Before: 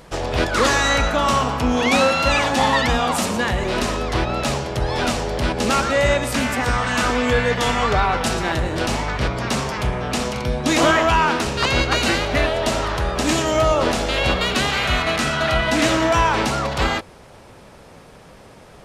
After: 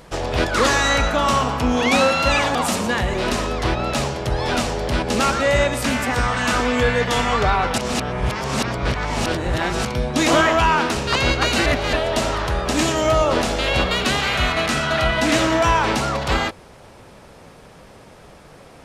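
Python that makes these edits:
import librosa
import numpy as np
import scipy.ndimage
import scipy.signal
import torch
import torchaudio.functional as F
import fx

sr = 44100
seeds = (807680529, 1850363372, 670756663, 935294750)

y = fx.edit(x, sr, fx.cut(start_s=2.55, length_s=0.5),
    fx.reverse_span(start_s=8.28, length_s=2.07),
    fx.reverse_span(start_s=12.16, length_s=0.27), tone=tone)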